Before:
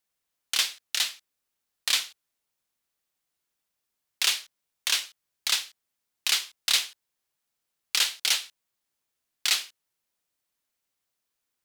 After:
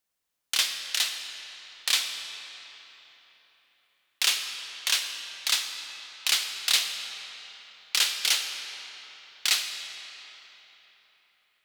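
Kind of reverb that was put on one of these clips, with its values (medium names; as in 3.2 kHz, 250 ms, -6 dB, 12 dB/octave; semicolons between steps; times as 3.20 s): algorithmic reverb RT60 4 s, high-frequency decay 0.75×, pre-delay 10 ms, DRR 5.5 dB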